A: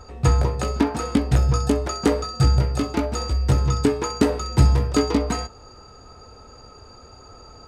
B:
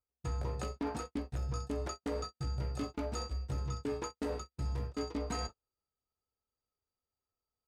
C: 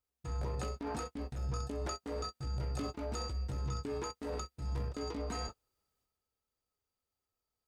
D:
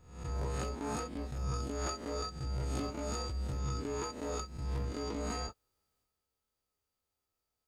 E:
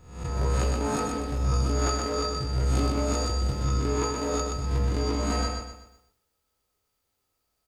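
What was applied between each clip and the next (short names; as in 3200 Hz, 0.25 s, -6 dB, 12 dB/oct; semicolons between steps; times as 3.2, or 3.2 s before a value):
reverse; compressor 10:1, threshold -28 dBFS, peak gain reduction 18.5 dB; reverse; gate -34 dBFS, range -45 dB; gain -5.5 dB
limiter -31 dBFS, peak gain reduction 5.5 dB; transient shaper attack -6 dB, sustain +7 dB; gain +2 dB
spectral swells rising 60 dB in 0.64 s
feedback echo 0.124 s, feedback 39%, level -4 dB; gain +8 dB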